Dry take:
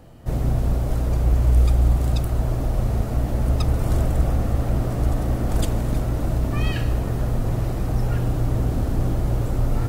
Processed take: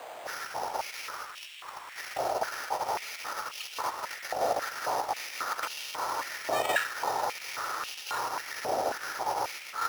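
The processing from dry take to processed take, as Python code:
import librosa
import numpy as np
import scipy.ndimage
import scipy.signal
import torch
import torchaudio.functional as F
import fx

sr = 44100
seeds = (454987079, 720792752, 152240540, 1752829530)

y = scipy.ndimage.median_filter(x, 9, mode='constant')
y = scipy.signal.sosfilt(scipy.signal.butter(16, 8600.0, 'lowpass', fs=sr, output='sos'), y)
y = y + 0.36 * np.pad(y, (int(2.2 * sr / 1000.0), 0))[:len(y)]
y = fx.over_compress(y, sr, threshold_db=-19.0, ratio=-0.5)
y = fx.dmg_noise_colour(y, sr, seeds[0], colour='pink', level_db=-47.0)
y = np.repeat(y[::8], 8)[:len(y)]
y = fx.filter_held_highpass(y, sr, hz=3.7, low_hz=690.0, high_hz=2800.0)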